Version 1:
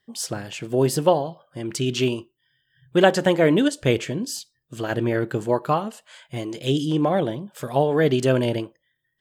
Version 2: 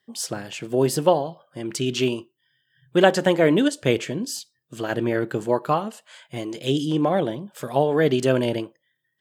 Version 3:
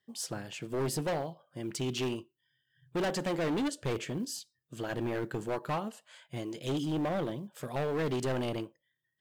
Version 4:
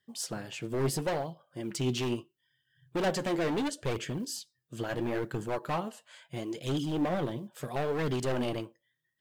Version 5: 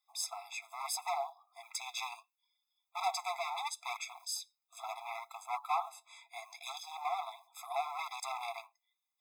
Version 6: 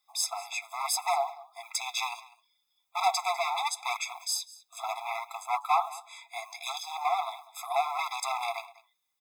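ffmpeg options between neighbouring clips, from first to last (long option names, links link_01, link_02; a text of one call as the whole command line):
ffmpeg -i in.wav -af "highpass=130" out.wav
ffmpeg -i in.wav -af "lowshelf=frequency=100:gain=9.5,volume=20dB,asoftclip=hard,volume=-20dB,acrusher=bits=9:mode=log:mix=0:aa=0.000001,volume=-8.5dB" out.wav
ffmpeg -i in.wav -af "flanger=delay=0.6:depth=8.2:regen=54:speed=0.74:shape=sinusoidal,volume=5.5dB" out.wav
ffmpeg -i in.wav -af "afftfilt=real='re*eq(mod(floor(b*sr/1024/670),2),1)':imag='im*eq(mod(floor(b*sr/1024/670),2),1)':win_size=1024:overlap=0.75,volume=2dB" out.wav
ffmpeg -i in.wav -af "aecho=1:1:199:0.1,volume=8dB" out.wav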